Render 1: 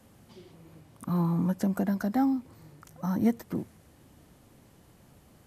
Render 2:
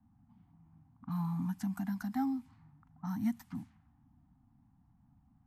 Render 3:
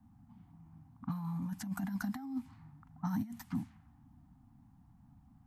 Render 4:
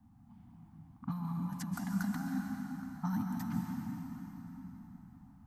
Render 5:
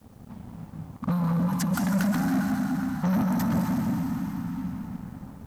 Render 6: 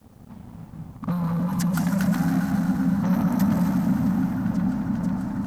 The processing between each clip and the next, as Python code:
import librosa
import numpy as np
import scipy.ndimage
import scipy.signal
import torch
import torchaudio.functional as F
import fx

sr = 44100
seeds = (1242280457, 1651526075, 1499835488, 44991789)

y1 = fx.env_lowpass(x, sr, base_hz=610.0, full_db=-26.5)
y1 = scipy.signal.sosfilt(scipy.signal.ellip(3, 1.0, 40, [270.0, 770.0], 'bandstop', fs=sr, output='sos'), y1)
y1 = F.gain(torch.from_numpy(y1), -7.0).numpy()
y2 = fx.over_compress(y1, sr, threshold_db=-37.0, ratio=-0.5)
y2 = F.gain(torch.from_numpy(y2), 1.5).numpy()
y3 = fx.rev_plate(y2, sr, seeds[0], rt60_s=4.3, hf_ratio=0.75, predelay_ms=115, drr_db=0.5)
y4 = fx.leveller(y3, sr, passes=3)
y4 = fx.quant_dither(y4, sr, seeds[1], bits=12, dither='triangular')
y4 = F.gain(torch.from_numpy(y4), 4.5).numpy()
y5 = fx.echo_opening(y4, sr, ms=491, hz=200, octaves=1, feedback_pct=70, wet_db=0)